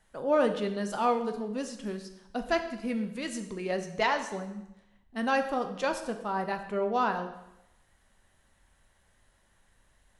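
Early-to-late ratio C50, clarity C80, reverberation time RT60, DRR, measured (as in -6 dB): 9.5 dB, 11.5 dB, 0.90 s, 6.0 dB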